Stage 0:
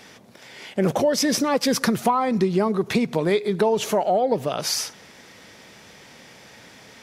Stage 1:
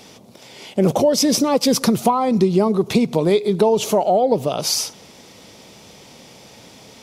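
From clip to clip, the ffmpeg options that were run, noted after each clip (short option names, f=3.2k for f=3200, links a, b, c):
-af "equalizer=f=1.7k:w=1.8:g=-12.5,volume=5dB"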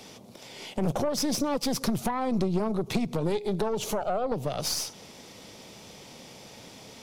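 -filter_complex "[0:a]acrossover=split=150[a][b];[b]acompressor=threshold=-26dB:ratio=2.5[c];[a][c]amix=inputs=2:normalize=0,aeval=exprs='(tanh(10*val(0)+0.65)-tanh(0.65))/10':c=same"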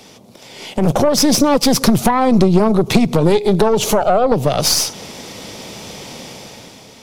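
-af "dynaudnorm=f=140:g=11:m=10dB,volume=5dB"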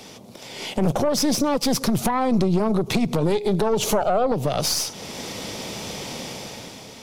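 -af "alimiter=limit=-11.5dB:level=0:latency=1:release=405"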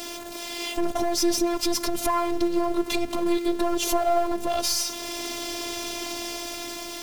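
-af "aeval=exprs='val(0)+0.5*0.0376*sgn(val(0))':c=same,afftfilt=real='hypot(re,im)*cos(PI*b)':imag='0':win_size=512:overlap=0.75"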